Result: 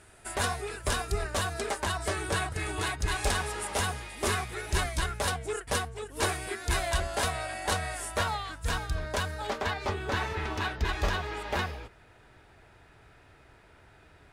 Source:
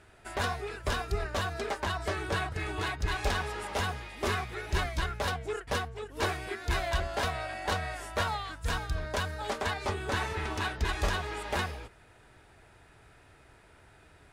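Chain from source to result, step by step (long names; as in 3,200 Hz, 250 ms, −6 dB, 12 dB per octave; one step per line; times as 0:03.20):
parametric band 9,300 Hz +12.5 dB 0.92 octaves, from 0:08.18 +4 dB, from 0:09.47 −6 dB
level +1 dB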